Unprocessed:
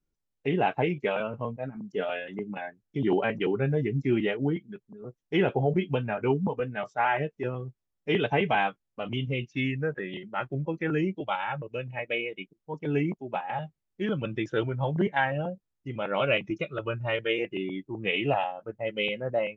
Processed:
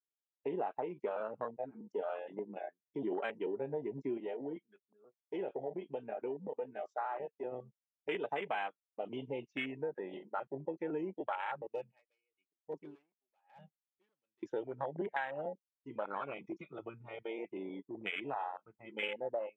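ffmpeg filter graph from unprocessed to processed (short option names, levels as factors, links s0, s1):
-filter_complex "[0:a]asettb=1/sr,asplit=3[s0][s1][s2];[s0]atrim=end=4.174[s3];[s1]atrim=start=4.17:end=7.52,asetpts=PTS-STARTPTS,afade=t=in:d=0.004:c=qsin,afade=t=out:st=3.346:d=0.004:c=qsin,acompressor=threshold=0.0316:ratio=2:attack=3.2:release=140:knee=1:detection=peak,highpass=f=91:p=1,lowshelf=f=330:g=-3.5[s4];[s2]atrim=start=7.516[s5];[s3][s4]acrossfade=d=0.004:c1=hsin:c2=qsin[s6];[s6][s5]acrossfade=d=0.004:c1=qsin:c2=hsin,asettb=1/sr,asplit=3[s7][s8][s9];[s7]atrim=end=11.734[s10];[s8]atrim=start=11.73:end=14.43,asetpts=PTS-STARTPTS,afade=t=in:d=0.004:c=qsin,afade=t=out:st=2.696:d=0.004:c=qsin,volume=23.7,asoftclip=hard,volume=0.0422,aeval=exprs='val(0)*pow(10,-37*(0.5-0.5*cos(2*PI*1*n/s))/20)':c=same[s11];[s9]atrim=start=14.426[s12];[s10][s11]acrossfade=d=0.004:c1=hsin:c2=qsin[s13];[s13][s12]acrossfade=d=0.004:c1=qsin:c2=hsin,asettb=1/sr,asplit=3[s14][s15][s16];[s14]atrim=end=16.044[s17];[s15]atrim=start=16.04:end=19.03,asetpts=PTS-STARTPTS,afade=t=in:d=0.004:c=qsin,afade=t=out:st=2.986:d=0.004:c=qsin,aecho=1:1:0.9:0.7,atrim=end_sample=131859,acompressor=threshold=0.0224:ratio=2:attack=3.2:release=140:knee=1:detection=peak[s18];[s16]atrim=start=19.026[s19];[s17][s18]acrossfade=d=0.004:c1=hsin:c2=qsin[s20];[s20][s19]acrossfade=d=0.004:c1=qsin:c2=hsin,afwtdn=0.0316,highpass=420,acompressor=threshold=0.02:ratio=6"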